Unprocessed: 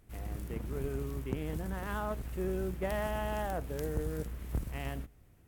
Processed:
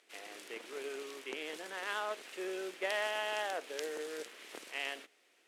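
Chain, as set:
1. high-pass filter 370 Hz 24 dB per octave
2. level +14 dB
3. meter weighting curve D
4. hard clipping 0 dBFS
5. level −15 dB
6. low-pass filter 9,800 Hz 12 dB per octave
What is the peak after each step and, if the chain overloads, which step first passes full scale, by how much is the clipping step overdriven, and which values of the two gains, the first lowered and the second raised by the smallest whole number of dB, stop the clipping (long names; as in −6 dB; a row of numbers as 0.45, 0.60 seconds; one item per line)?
−23.5, −9.5, −2.0, −2.0, −17.0, −17.5 dBFS
no step passes full scale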